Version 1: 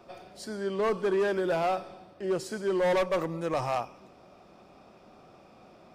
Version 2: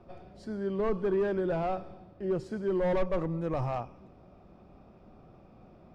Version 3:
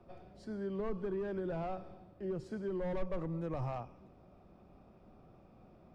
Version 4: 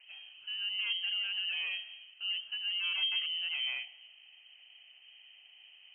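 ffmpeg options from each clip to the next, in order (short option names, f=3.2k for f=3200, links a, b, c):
-af "aemphasis=mode=reproduction:type=riaa,volume=-5.5dB"
-filter_complex "[0:a]acrossover=split=220[a][b];[b]acompressor=threshold=-32dB:ratio=5[c];[a][c]amix=inputs=2:normalize=0,volume=-5dB"
-af "lowpass=f=2.7k:t=q:w=0.5098,lowpass=f=2.7k:t=q:w=0.6013,lowpass=f=2.7k:t=q:w=0.9,lowpass=f=2.7k:t=q:w=2.563,afreqshift=-3200,volume=2dB"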